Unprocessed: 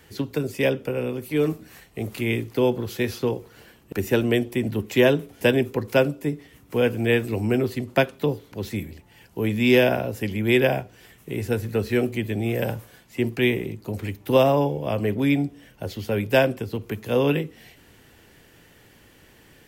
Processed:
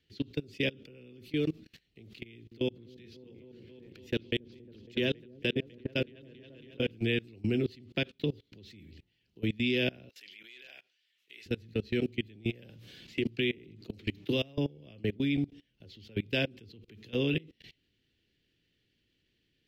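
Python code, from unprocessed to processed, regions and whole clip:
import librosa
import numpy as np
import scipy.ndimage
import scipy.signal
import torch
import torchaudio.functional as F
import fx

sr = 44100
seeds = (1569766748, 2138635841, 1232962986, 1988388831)

y = fx.chain(x, sr, fx.level_steps(step_db=19),
    fx.echo_opening(ms=275, hz=400, octaves=1, feedback_pct=70, wet_db=-3), at=(2.24, 6.91))
y = fx.chain(y, sr, fx.highpass(hz=1200.0, slope=12),
    fx.clip_hard(threshold_db=-22.5), at=(10.09, 11.46))
y = fx.chain(y, sr, fx.hum_notches(base_hz=60, count=5),
    fx.band_squash(depth_pct=70), at=(12.69, 14.58))
y = fx.curve_eq(y, sr, hz=(350.0, 920.0, 2900.0, 4200.0, 9100.0), db=(0, -18, 5, 6, -16))
y = fx.level_steps(y, sr, step_db=24)
y = F.gain(torch.from_numpy(y), -4.0).numpy()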